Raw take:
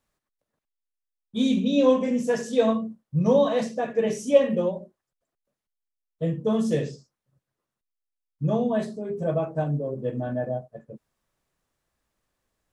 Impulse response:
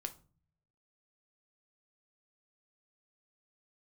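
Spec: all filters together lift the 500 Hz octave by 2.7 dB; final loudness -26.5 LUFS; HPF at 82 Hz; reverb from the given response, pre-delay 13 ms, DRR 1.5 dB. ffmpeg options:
-filter_complex "[0:a]highpass=82,equalizer=f=500:t=o:g=3,asplit=2[s0][s1];[1:a]atrim=start_sample=2205,adelay=13[s2];[s1][s2]afir=irnorm=-1:irlink=0,volume=1.06[s3];[s0][s3]amix=inputs=2:normalize=0,volume=0.531"

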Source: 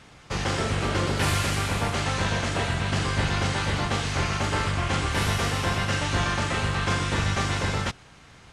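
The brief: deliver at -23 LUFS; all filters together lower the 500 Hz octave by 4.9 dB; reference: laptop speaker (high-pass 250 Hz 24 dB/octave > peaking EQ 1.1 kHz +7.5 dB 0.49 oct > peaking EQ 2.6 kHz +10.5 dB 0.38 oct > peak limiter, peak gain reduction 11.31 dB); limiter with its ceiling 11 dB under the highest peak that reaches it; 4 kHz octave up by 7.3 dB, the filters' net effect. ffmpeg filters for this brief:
-af "equalizer=f=500:t=o:g=-7,equalizer=f=4000:t=o:g=5.5,alimiter=limit=0.0668:level=0:latency=1,highpass=f=250:w=0.5412,highpass=f=250:w=1.3066,equalizer=f=1100:t=o:w=0.49:g=7.5,equalizer=f=2600:t=o:w=0.38:g=10.5,volume=4.47,alimiter=limit=0.158:level=0:latency=1"

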